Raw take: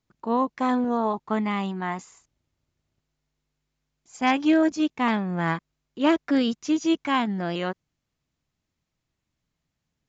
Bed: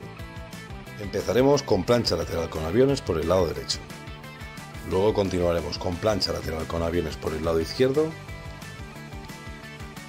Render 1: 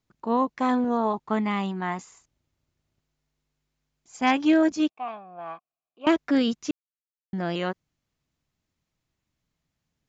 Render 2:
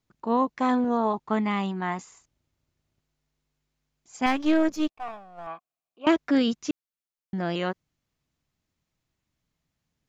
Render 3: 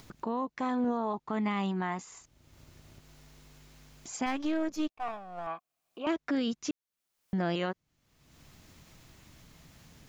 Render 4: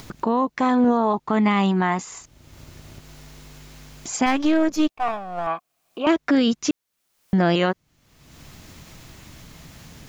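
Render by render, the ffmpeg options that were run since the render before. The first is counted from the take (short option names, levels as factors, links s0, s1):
-filter_complex "[0:a]asettb=1/sr,asplit=3[s0][s1][s2];[s0]atrim=end=4.894[s3];[s1]atrim=start=4.89:end=6.07,asetpts=PTS-STARTPTS,afade=t=in:d=0.004:c=qsin,afade=t=out:st=1.176:d=0.004:c=qsin,asplit=3[s4][s5][s6];[s4]bandpass=f=730:t=q:w=8,volume=1[s7];[s5]bandpass=f=1090:t=q:w=8,volume=0.501[s8];[s6]bandpass=f=2440:t=q:w=8,volume=0.355[s9];[s7][s8][s9]amix=inputs=3:normalize=0[s10];[s2]atrim=start=6.066[s11];[s3][s10]acrossfade=d=0.004:c1=hsin:c2=qsin[s12];[s12][s11]acrossfade=d=0.004:c1=qsin:c2=hsin,asplit=3[s13][s14][s15];[s13]atrim=end=6.71,asetpts=PTS-STARTPTS,afade=t=out:st=6.706:d=0.004:c=hsin[s16];[s14]atrim=start=6.71:end=7.33,asetpts=PTS-STARTPTS,volume=0[s17];[s15]atrim=start=7.33,asetpts=PTS-STARTPTS,afade=t=in:d=0.004:c=hsin[s18];[s16][s17][s18]concat=n=3:v=0:a=1"
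-filter_complex "[0:a]asettb=1/sr,asplit=3[s0][s1][s2];[s0]atrim=end=4.264[s3];[s1]atrim=start=4.26:end=5.47,asetpts=PTS-STARTPTS,afade=t=in:d=0.004:c=qsin,afade=t=out:st=1.206:d=0.004:c=qsin,aeval=exprs='if(lt(val(0),0),0.447*val(0),val(0))':c=same[s4];[s2]atrim=start=5.466[s5];[s3][s4]acrossfade=d=0.004:c1=hsin:c2=qsin[s6];[s6][s5]acrossfade=d=0.004:c1=qsin:c2=hsin"
-af "alimiter=limit=0.0708:level=0:latency=1:release=215,acompressor=mode=upward:threshold=0.0178:ratio=2.5"
-af "volume=3.98"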